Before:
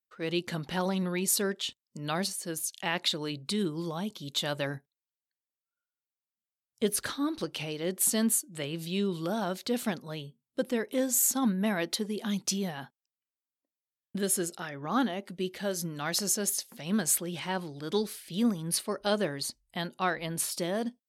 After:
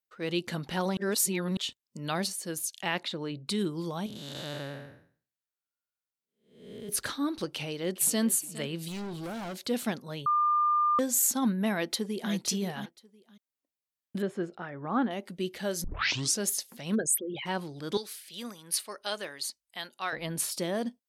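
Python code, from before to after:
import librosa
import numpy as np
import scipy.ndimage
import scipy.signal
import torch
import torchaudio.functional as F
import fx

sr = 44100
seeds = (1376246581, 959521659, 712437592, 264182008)

y = fx.lowpass(x, sr, hz=1700.0, slope=6, at=(3.03, 3.48))
y = fx.spec_blur(y, sr, span_ms=371.0, at=(4.06, 6.89))
y = fx.echo_throw(y, sr, start_s=7.54, length_s=0.71, ms=410, feedback_pct=40, wet_db=-16.0)
y = fx.clip_hard(y, sr, threshold_db=-35.0, at=(8.88, 9.58))
y = fx.echo_throw(y, sr, start_s=11.71, length_s=0.62, ms=520, feedback_pct=15, wet_db=-9.0)
y = fx.lowpass(y, sr, hz=1700.0, slope=12, at=(14.22, 15.11))
y = fx.envelope_sharpen(y, sr, power=3.0, at=(16.94, 17.45), fade=0.02)
y = fx.highpass(y, sr, hz=1400.0, slope=6, at=(17.97, 20.13))
y = fx.edit(y, sr, fx.reverse_span(start_s=0.97, length_s=0.6),
    fx.bleep(start_s=10.26, length_s=0.73, hz=1200.0, db=-22.0),
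    fx.tape_start(start_s=15.84, length_s=0.55), tone=tone)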